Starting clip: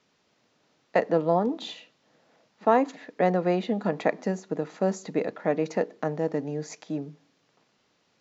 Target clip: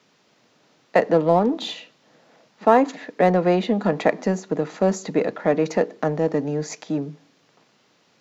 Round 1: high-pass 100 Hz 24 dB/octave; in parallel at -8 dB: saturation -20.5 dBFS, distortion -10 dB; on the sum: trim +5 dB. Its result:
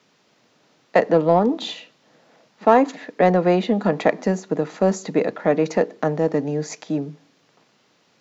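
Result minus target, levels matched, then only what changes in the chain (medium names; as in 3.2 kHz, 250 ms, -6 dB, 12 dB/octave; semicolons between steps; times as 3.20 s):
saturation: distortion -7 dB
change: saturation -32 dBFS, distortion -3 dB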